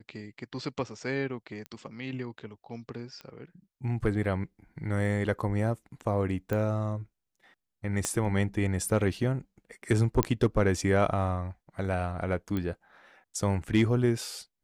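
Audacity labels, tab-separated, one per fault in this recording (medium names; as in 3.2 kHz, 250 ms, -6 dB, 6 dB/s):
1.660000	1.660000	pop -25 dBFS
3.210000	3.210000	pop -28 dBFS
6.530000	6.530000	pop -19 dBFS
8.050000	8.050000	pop -14 dBFS
10.230000	10.230000	pop -8 dBFS
12.570000	12.570000	pop -20 dBFS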